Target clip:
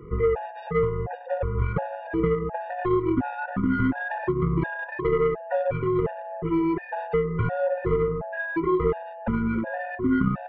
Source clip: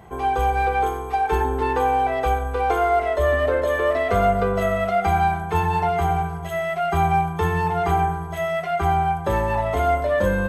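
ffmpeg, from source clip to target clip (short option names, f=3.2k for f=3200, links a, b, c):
-af "highpass=f=150:t=q:w=0.5412,highpass=f=150:t=q:w=1.307,lowpass=f=2.4k:t=q:w=0.5176,lowpass=f=2.4k:t=q:w=0.7071,lowpass=f=2.4k:t=q:w=1.932,afreqshift=-330,acontrast=87,aeval=exprs='0.631*(cos(1*acos(clip(val(0)/0.631,-1,1)))-cos(1*PI/2))+0.158*(cos(3*acos(clip(val(0)/0.631,-1,1)))-cos(3*PI/2))+0.02*(cos(5*acos(clip(val(0)/0.631,-1,1)))-cos(5*PI/2))':c=same,acompressor=threshold=-25dB:ratio=6,afftfilt=real='re*gt(sin(2*PI*1.4*pts/sr)*(1-2*mod(floor(b*sr/1024/480),2)),0)':imag='im*gt(sin(2*PI*1.4*pts/sr)*(1-2*mod(floor(b*sr/1024/480),2)),0)':win_size=1024:overlap=0.75,volume=6.5dB"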